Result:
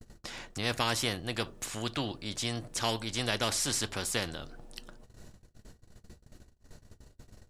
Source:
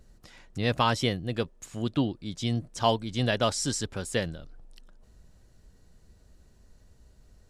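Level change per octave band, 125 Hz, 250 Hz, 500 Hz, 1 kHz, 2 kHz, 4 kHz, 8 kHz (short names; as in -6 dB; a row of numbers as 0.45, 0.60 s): -7.5, -7.5, -7.0, -6.0, -0.5, +0.5, +2.5 dB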